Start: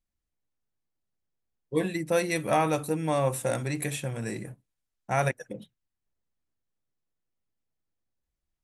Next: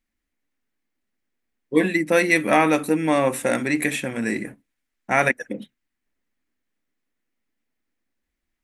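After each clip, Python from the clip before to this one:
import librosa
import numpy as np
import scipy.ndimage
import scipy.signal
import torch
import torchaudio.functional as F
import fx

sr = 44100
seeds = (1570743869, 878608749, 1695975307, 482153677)

y = fx.graphic_eq(x, sr, hz=(125, 250, 2000), db=(-11, 12, 11))
y = y * librosa.db_to_amplitude(3.5)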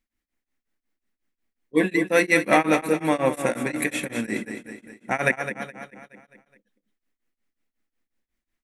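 y = fx.echo_feedback(x, sr, ms=210, feedback_pct=49, wet_db=-8.5)
y = y * np.abs(np.cos(np.pi * 5.5 * np.arange(len(y)) / sr))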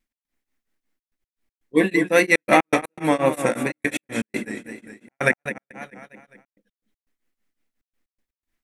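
y = fx.step_gate(x, sr, bpm=121, pattern='x.xxxxxx.x.', floor_db=-60.0, edge_ms=4.5)
y = fx.vibrato(y, sr, rate_hz=2.8, depth_cents=44.0)
y = y * librosa.db_to_amplitude(2.5)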